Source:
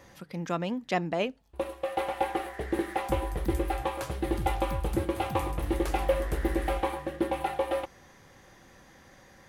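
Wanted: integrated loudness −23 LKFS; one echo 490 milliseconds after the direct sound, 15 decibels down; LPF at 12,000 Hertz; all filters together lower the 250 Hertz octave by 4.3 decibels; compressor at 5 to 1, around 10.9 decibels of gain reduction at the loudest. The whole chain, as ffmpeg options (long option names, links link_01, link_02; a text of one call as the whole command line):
ffmpeg -i in.wav -af "lowpass=12000,equalizer=frequency=250:width_type=o:gain=-7,acompressor=threshold=-35dB:ratio=5,aecho=1:1:490:0.178,volume=17dB" out.wav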